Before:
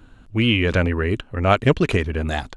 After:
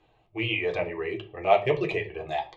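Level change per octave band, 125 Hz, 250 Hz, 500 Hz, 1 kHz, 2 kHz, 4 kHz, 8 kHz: -16.5 dB, -13.5 dB, -3.5 dB, -2.5 dB, -7.0 dB, -9.5 dB, no reading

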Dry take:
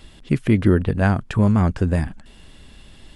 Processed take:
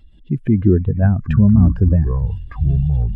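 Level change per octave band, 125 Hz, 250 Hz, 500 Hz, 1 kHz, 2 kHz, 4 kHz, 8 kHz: +6.5 dB, +3.5 dB, -0.5 dB, -7.0 dB, -8.0 dB, under -10 dB, no reading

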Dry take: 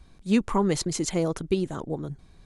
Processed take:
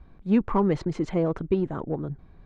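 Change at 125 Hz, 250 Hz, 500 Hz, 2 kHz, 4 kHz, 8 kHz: +1.5 dB, +1.0 dB, +1.0 dB, -4.0 dB, -13.0 dB, under -20 dB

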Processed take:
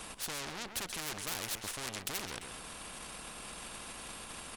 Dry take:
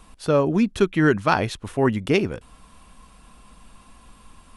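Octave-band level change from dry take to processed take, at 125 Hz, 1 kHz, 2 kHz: -24.0 dB, -17.0 dB, -14.0 dB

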